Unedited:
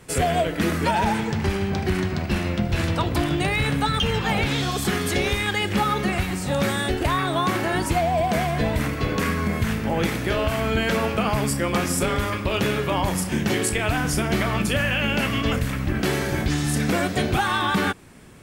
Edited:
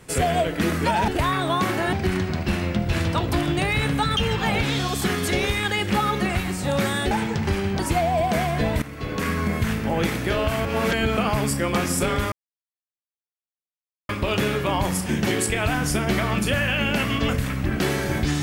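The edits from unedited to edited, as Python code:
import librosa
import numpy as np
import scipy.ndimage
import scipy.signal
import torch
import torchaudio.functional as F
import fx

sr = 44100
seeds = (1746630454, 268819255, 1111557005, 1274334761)

y = fx.edit(x, sr, fx.swap(start_s=1.08, length_s=0.68, other_s=6.94, other_length_s=0.85),
    fx.fade_in_from(start_s=8.82, length_s=0.55, floor_db=-15.0),
    fx.reverse_span(start_s=10.65, length_s=0.52),
    fx.insert_silence(at_s=12.32, length_s=1.77), tone=tone)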